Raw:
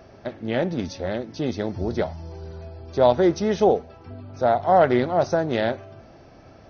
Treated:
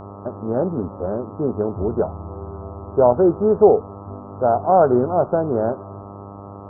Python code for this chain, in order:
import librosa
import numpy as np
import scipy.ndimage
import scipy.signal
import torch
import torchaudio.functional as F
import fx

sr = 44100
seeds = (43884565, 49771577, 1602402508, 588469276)

y = scipy.signal.sosfilt(scipy.signal.butter(12, 1400.0, 'lowpass', fs=sr, output='sos'), x)
y = fx.peak_eq(y, sr, hz=420.0, db=7.0, octaves=0.21)
y = fx.dmg_buzz(y, sr, base_hz=100.0, harmonics=13, level_db=-39.0, tilt_db=-3, odd_only=False)
y = y * 10.0 ** (2.0 / 20.0)